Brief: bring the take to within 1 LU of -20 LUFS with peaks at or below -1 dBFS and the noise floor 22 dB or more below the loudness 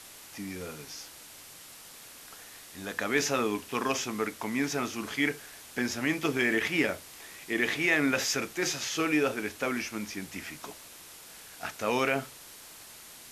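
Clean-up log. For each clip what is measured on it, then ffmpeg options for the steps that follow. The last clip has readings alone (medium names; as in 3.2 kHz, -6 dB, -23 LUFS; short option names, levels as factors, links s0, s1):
noise floor -49 dBFS; noise floor target -52 dBFS; loudness -30.0 LUFS; peak level -12.0 dBFS; loudness target -20.0 LUFS
-> -af "afftdn=nr=6:nf=-49"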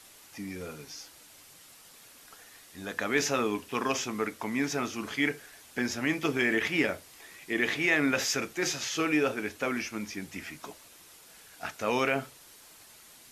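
noise floor -54 dBFS; loudness -30.0 LUFS; peak level -12.0 dBFS; loudness target -20.0 LUFS
-> -af "volume=3.16"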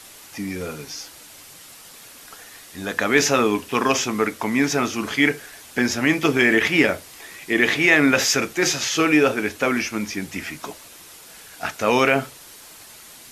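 loudness -20.0 LUFS; peak level -2.0 dBFS; noise floor -44 dBFS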